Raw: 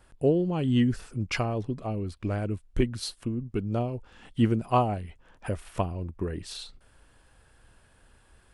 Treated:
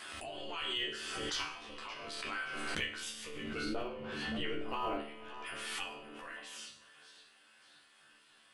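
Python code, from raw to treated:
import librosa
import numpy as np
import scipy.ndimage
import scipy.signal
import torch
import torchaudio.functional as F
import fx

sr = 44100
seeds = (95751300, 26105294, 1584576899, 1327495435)

p1 = fx.riaa(x, sr, side='playback', at=(3.41, 5.0))
p2 = fx.echo_feedback(p1, sr, ms=571, feedback_pct=40, wet_db=-21)
p3 = fx.spec_gate(p2, sr, threshold_db=-15, keep='weak')
p4 = fx.peak_eq(p3, sr, hz=3000.0, db=13.0, octaves=2.7)
p5 = fx.resonator_bank(p4, sr, root=38, chord='sus4', decay_s=0.54)
p6 = fx.schmitt(p5, sr, flips_db=-35.5)
p7 = p5 + F.gain(torch.from_numpy(p6), -10.0).numpy()
p8 = fx.doubler(p7, sr, ms=13.0, db=-2.0)
p9 = fx.over_compress(p8, sr, threshold_db=-39.0, ratio=-1.0)
p10 = fx.rev_spring(p9, sr, rt60_s=2.9, pass_ms=(50,), chirp_ms=45, drr_db=17.5)
p11 = fx.pre_swell(p10, sr, db_per_s=22.0)
y = F.gain(torch.from_numpy(p11), 4.0).numpy()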